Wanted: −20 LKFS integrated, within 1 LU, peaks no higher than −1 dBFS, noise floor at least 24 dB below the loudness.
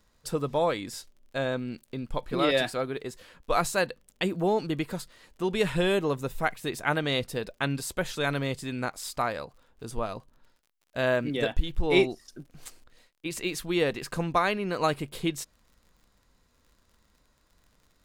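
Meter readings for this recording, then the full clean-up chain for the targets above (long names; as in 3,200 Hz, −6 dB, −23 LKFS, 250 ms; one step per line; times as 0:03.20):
crackle rate 44 per second; integrated loudness −29.5 LKFS; sample peak −9.5 dBFS; target loudness −20.0 LKFS
→ click removal
level +9.5 dB
brickwall limiter −1 dBFS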